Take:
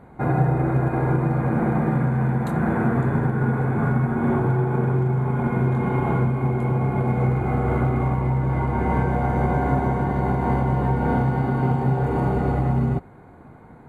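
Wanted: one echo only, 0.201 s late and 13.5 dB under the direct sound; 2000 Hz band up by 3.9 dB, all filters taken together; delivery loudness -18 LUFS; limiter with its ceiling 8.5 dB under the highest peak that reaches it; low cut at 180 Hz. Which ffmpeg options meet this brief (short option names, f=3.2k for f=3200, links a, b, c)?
-af "highpass=180,equalizer=f=2k:t=o:g=5.5,alimiter=limit=-19dB:level=0:latency=1,aecho=1:1:201:0.211,volume=9.5dB"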